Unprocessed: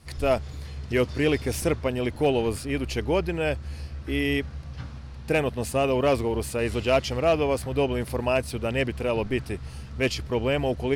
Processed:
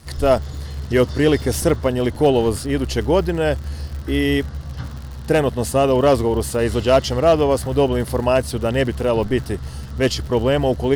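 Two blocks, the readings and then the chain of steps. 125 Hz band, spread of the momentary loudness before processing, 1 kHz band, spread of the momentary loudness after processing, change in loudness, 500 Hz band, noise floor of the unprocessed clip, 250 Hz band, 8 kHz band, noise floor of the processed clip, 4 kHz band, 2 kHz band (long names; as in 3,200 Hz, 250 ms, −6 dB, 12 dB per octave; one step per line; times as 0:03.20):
+7.5 dB, 13 LU, +7.5 dB, 13 LU, +7.0 dB, +7.5 dB, −40 dBFS, +7.5 dB, +7.5 dB, −32 dBFS, +6.0 dB, +3.0 dB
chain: parametric band 2,400 Hz −14 dB 0.24 octaves
surface crackle 86 per second −37 dBFS
level +7.5 dB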